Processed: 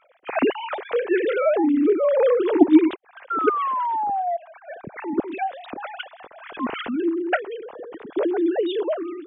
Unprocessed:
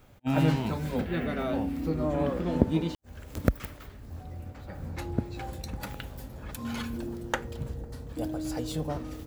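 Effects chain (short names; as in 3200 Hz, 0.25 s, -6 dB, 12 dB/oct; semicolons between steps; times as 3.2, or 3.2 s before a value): sine-wave speech; painted sound fall, 3.3–4.37, 670–1400 Hz -32 dBFS; AGC gain up to 4 dB; gain +4.5 dB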